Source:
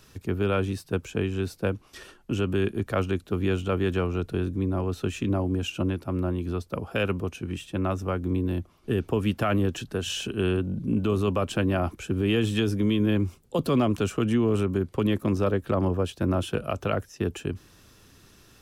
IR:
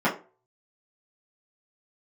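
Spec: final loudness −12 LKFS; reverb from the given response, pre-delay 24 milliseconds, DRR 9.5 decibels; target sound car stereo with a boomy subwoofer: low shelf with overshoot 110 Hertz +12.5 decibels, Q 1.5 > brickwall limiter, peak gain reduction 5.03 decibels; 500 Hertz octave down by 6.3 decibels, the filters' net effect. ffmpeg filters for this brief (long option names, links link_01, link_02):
-filter_complex "[0:a]equalizer=frequency=500:width_type=o:gain=-7.5,asplit=2[link_01][link_02];[1:a]atrim=start_sample=2205,adelay=24[link_03];[link_02][link_03]afir=irnorm=-1:irlink=0,volume=-25dB[link_04];[link_01][link_04]amix=inputs=2:normalize=0,lowshelf=frequency=110:width_type=q:width=1.5:gain=12.5,volume=13dB,alimiter=limit=-2.5dB:level=0:latency=1"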